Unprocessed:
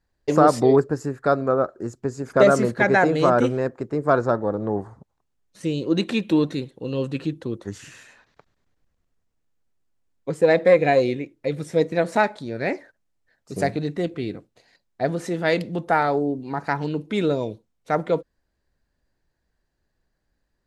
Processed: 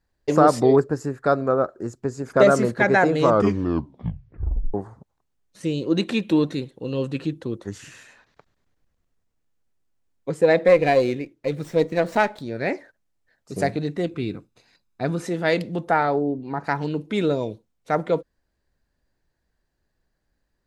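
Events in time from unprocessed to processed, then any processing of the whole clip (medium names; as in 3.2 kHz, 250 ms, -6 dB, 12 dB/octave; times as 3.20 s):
3.18 s: tape stop 1.56 s
10.68–12.42 s: sliding maximum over 3 samples
14.08–15.23 s: comb 0.8 ms, depth 45%
15.90–16.63 s: low-pass 4.5 kHz -> 2.2 kHz 6 dB/octave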